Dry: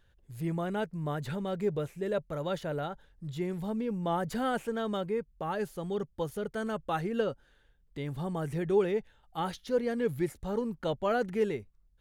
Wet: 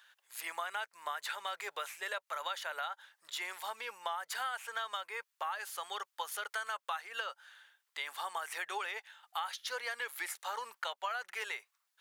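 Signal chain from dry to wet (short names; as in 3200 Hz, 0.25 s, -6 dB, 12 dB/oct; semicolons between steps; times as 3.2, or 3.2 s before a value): HPF 980 Hz 24 dB/oct; compressor 12:1, threshold -46 dBFS, peak gain reduction 15.5 dB; gain +11.5 dB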